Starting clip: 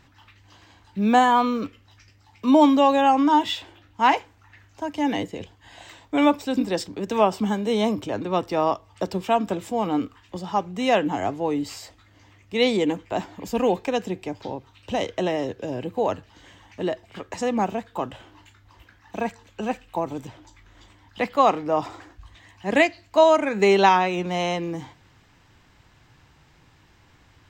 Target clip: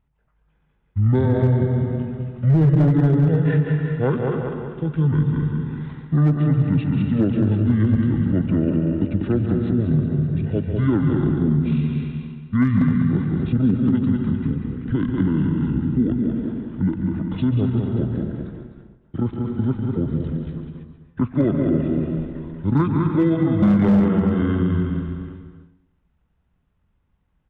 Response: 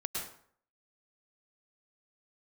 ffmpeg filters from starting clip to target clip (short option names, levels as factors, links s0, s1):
-filter_complex "[0:a]aecho=1:1:193|386|579|772|965|1158|1351:0.562|0.292|0.152|0.0791|0.0411|0.0214|0.0111,agate=range=0.112:threshold=0.00708:ratio=16:detection=peak,lowshelf=f=640:t=q:w=1.5:g=8.5,asetrate=22696,aresample=44100,atempo=1.94306,asplit=2[s0][s1];[1:a]atrim=start_sample=2205,adelay=142[s2];[s1][s2]afir=irnorm=-1:irlink=0,volume=0.335[s3];[s0][s3]amix=inputs=2:normalize=0,aresample=8000,aresample=44100,asoftclip=type=hard:threshold=0.668,acompressor=threshold=0.158:ratio=2,volume=0.841"